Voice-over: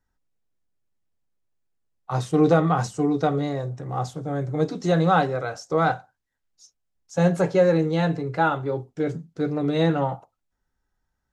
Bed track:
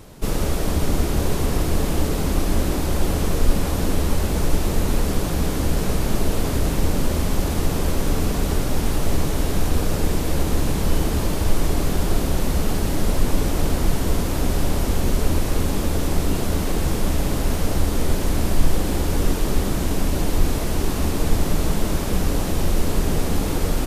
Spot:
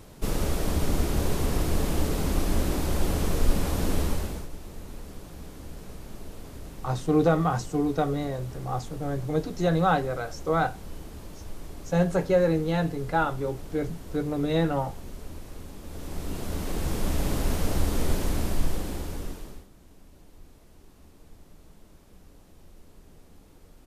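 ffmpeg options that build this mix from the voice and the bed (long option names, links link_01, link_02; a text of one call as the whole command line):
ffmpeg -i stem1.wav -i stem2.wav -filter_complex "[0:a]adelay=4750,volume=-3.5dB[link_01];[1:a]volume=10.5dB,afade=type=out:start_time=4.01:duration=0.47:silence=0.16788,afade=type=in:start_time=15.82:duration=1.46:silence=0.16788,afade=type=out:start_time=18.12:duration=1.55:silence=0.0446684[link_02];[link_01][link_02]amix=inputs=2:normalize=0" out.wav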